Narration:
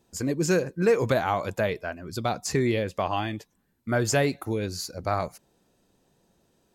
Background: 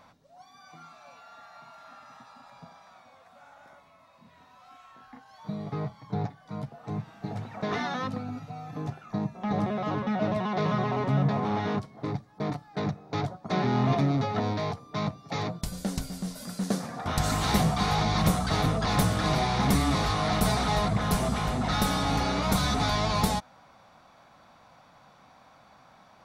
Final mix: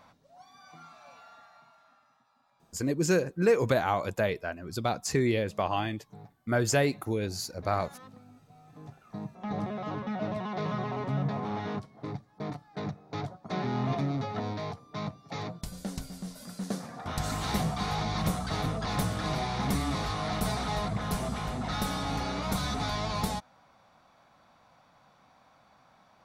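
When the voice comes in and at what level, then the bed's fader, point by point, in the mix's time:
2.60 s, -2.0 dB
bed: 1.23 s -1.5 dB
2.2 s -18.5 dB
8.42 s -18.5 dB
9.44 s -5.5 dB

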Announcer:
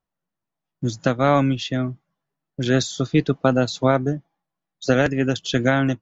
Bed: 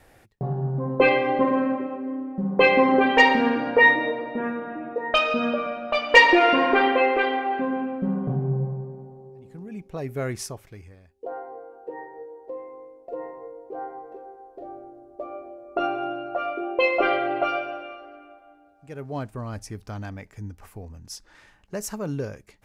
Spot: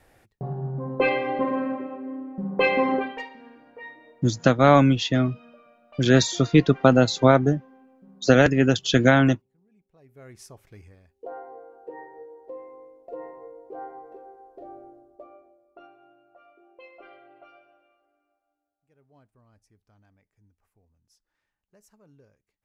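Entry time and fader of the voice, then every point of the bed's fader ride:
3.40 s, +2.0 dB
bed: 2.94 s -4 dB
3.3 s -26.5 dB
9.94 s -26.5 dB
10.77 s -3.5 dB
14.91 s -3.5 dB
15.96 s -27.5 dB

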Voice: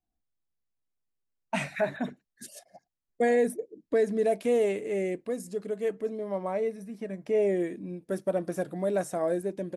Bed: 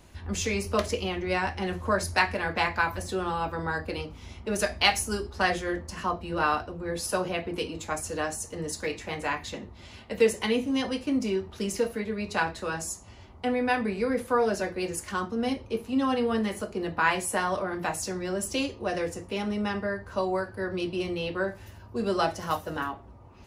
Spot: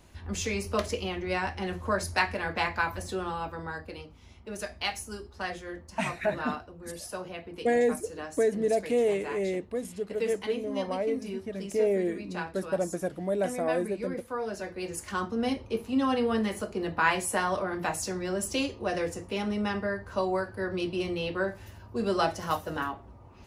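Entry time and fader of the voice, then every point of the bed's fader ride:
4.45 s, -0.5 dB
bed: 3.13 s -2.5 dB
4.05 s -9.5 dB
14.37 s -9.5 dB
15.23 s -0.5 dB

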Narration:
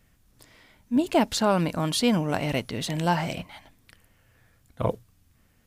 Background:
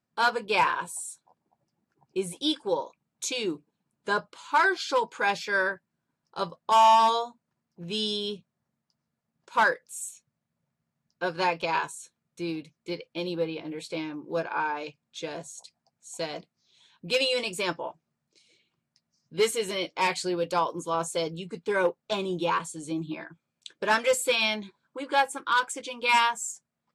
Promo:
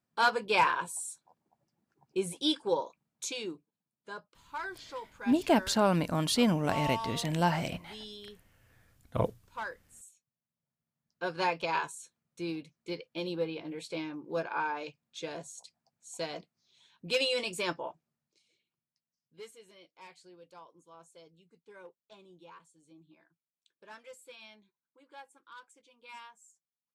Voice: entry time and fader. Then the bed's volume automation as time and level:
4.35 s, -3.5 dB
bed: 3.03 s -2 dB
3.98 s -16.5 dB
10.26 s -16.5 dB
11.36 s -4 dB
17.95 s -4 dB
19.64 s -26.5 dB

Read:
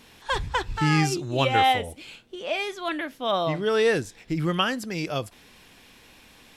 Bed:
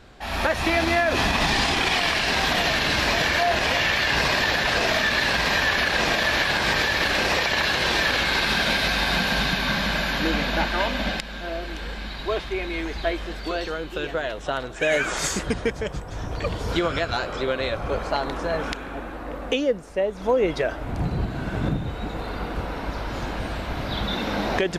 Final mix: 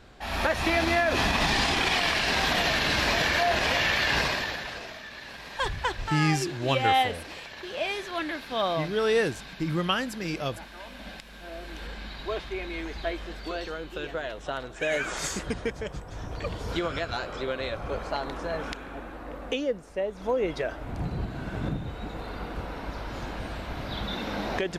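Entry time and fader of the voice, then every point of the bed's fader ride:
5.30 s, -2.5 dB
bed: 4.17 s -3 dB
4.97 s -20.5 dB
10.75 s -20.5 dB
11.82 s -6 dB

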